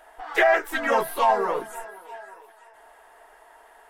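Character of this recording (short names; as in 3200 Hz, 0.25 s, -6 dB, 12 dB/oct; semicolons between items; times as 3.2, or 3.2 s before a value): noise floor -53 dBFS; spectral tilt 0.0 dB/oct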